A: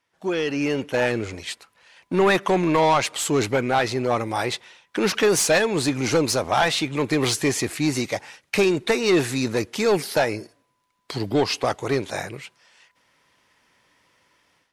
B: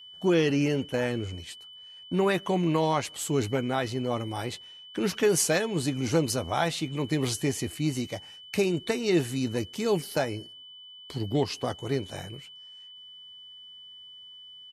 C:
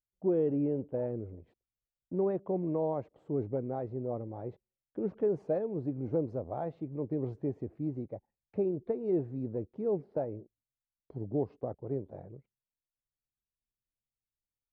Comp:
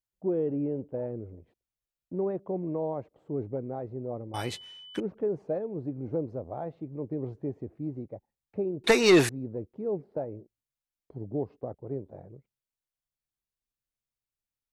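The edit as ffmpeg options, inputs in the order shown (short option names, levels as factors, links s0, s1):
-filter_complex "[2:a]asplit=3[s0][s1][s2];[s0]atrim=end=4.342[s3];[1:a]atrim=start=4.338:end=5.002[s4];[s1]atrim=start=4.998:end=8.842[s5];[0:a]atrim=start=8.838:end=9.292[s6];[s2]atrim=start=9.288[s7];[s3][s4]acrossfade=d=0.004:c1=hsin:c2=hsin[s8];[s8][s5]acrossfade=d=0.004:c1=hsin:c2=hsin[s9];[s9][s6]acrossfade=d=0.004:c1=hsin:c2=hsin[s10];[s10][s7]acrossfade=d=0.004:c1=hsin:c2=hsin"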